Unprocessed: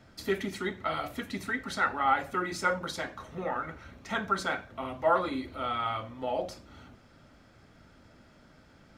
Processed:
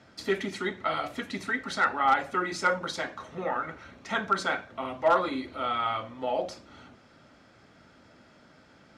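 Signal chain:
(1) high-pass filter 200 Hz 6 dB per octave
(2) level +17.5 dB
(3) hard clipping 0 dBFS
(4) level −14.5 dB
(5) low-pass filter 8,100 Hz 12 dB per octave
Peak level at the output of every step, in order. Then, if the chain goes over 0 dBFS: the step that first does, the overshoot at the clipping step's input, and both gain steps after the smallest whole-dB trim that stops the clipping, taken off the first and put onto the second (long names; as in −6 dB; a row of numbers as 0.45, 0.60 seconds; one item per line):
−13.5, +4.0, 0.0, −14.5, −14.5 dBFS
step 2, 4.0 dB
step 2 +13.5 dB, step 4 −10.5 dB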